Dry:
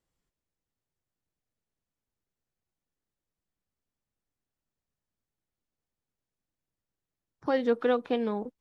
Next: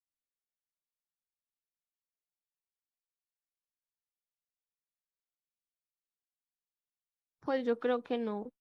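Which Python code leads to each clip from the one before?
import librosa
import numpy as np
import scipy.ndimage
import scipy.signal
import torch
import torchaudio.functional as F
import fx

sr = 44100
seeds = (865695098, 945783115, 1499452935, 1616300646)

y = fx.noise_reduce_blind(x, sr, reduce_db=22)
y = y * 10.0 ** (-5.5 / 20.0)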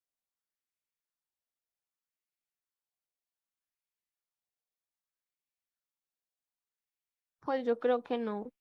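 y = fx.rider(x, sr, range_db=10, speed_s=2.0)
y = fx.bell_lfo(y, sr, hz=0.64, low_hz=590.0, high_hz=2400.0, db=7)
y = y * 10.0 ** (-1.5 / 20.0)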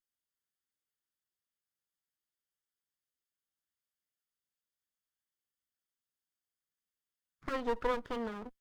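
y = fx.lower_of_two(x, sr, delay_ms=0.62)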